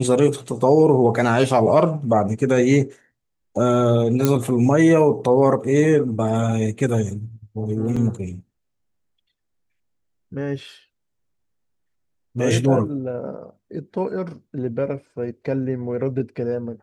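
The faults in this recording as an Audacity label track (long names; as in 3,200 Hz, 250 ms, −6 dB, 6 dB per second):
4.250000	4.250000	click −4 dBFS
7.960000	7.970000	drop-out 5.1 ms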